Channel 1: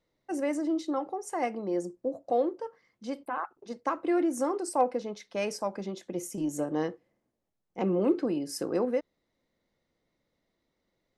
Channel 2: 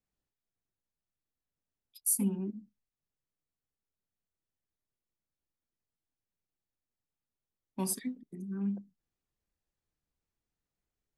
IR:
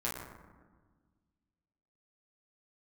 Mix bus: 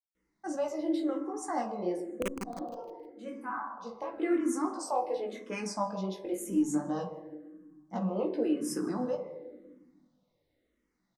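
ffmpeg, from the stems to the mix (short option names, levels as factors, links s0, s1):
-filter_complex "[0:a]alimiter=limit=0.0891:level=0:latency=1:release=182,flanger=delay=15.5:depth=4.6:speed=2.2,adelay=150,volume=1.19,asplit=3[s0][s1][s2];[s1]volume=0.473[s3];[s2]volume=0.0631[s4];[1:a]lowpass=f=1400:p=1,acrusher=bits=3:mix=0:aa=0.000001,volume=0.891,asplit=3[s5][s6][s7];[s6]volume=0.596[s8];[s7]apad=whole_len=499410[s9];[s0][s9]sidechaincompress=threshold=0.00398:ratio=8:attack=7.9:release=1210[s10];[2:a]atrim=start_sample=2205[s11];[s3][s11]afir=irnorm=-1:irlink=0[s12];[s4][s8]amix=inputs=2:normalize=0,aecho=0:1:155|310|465|620|775:1|0.39|0.152|0.0593|0.0231[s13];[s10][s5][s12][s13]amix=inputs=4:normalize=0,asplit=2[s14][s15];[s15]afreqshift=-0.94[s16];[s14][s16]amix=inputs=2:normalize=1"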